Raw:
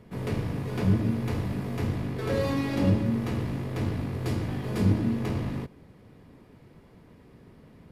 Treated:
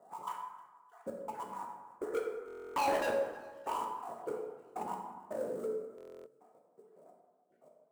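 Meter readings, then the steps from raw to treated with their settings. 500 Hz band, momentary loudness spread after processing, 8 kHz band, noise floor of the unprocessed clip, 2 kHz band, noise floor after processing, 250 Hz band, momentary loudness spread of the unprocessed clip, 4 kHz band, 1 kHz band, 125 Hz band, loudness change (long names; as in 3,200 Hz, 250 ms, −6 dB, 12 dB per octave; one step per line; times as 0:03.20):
−3.0 dB, 16 LU, −4.0 dB, −54 dBFS, −5.5 dB, −70 dBFS, −21.0 dB, 7 LU, −8.5 dB, +3.5 dB, −35.0 dB, −10.0 dB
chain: time-frequency cells dropped at random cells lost 34%
high-pass filter 150 Hz 24 dB per octave
gain on a spectral selection 0:01.93–0:03.76, 260–2,000 Hz +12 dB
parametric band 1,300 Hz +7 dB 0.42 octaves
LFO wah 0.85 Hz 440–1,000 Hz, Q 17
in parallel at −3 dB: sample-rate reduction 8,600 Hz, jitter 20%
on the sum: gate pattern "xx...x.xx..x..x" 82 BPM −60 dB
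soft clipping −39.5 dBFS, distortion −4 dB
on a send: delay with a high-pass on its return 310 ms, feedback 58%, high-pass 2,300 Hz, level −23 dB
on the sum: dense smooth reverb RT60 1.4 s, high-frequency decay 0.5×, DRR 0.5 dB
buffer that repeats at 0:02.46/0:05.96, samples 1,024, times 12
level +9 dB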